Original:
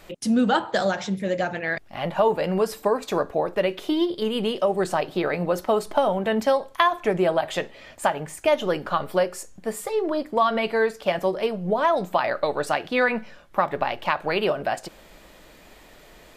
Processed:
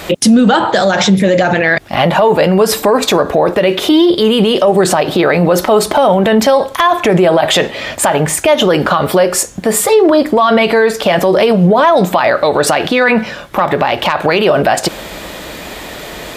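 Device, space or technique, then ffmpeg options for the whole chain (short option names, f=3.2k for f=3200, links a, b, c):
mastering chain: -af "highpass=56,equalizer=f=3.6k:t=o:w=0.25:g=3,acompressor=threshold=-23dB:ratio=2,asoftclip=type=tanh:threshold=-9.5dB,asoftclip=type=hard:threshold=-13.5dB,alimiter=level_in=24dB:limit=-1dB:release=50:level=0:latency=1,volume=-1dB"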